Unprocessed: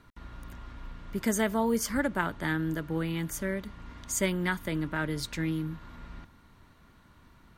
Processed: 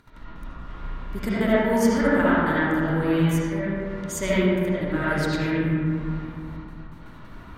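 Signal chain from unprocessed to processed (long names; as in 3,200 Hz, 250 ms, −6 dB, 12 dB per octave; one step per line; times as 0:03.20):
noise gate with hold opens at −48 dBFS
upward compression, threshold −42 dBFS
gate pattern "xx.x.xxxx" 128 BPM −60 dB
convolution reverb RT60 2.5 s, pre-delay 35 ms, DRR −10.5 dB
level −1.5 dB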